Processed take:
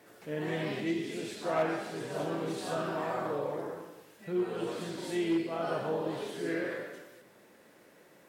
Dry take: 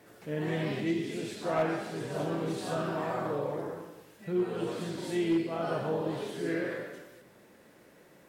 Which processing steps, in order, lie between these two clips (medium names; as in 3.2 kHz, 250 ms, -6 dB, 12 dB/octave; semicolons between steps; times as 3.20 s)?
bass shelf 150 Hz -10 dB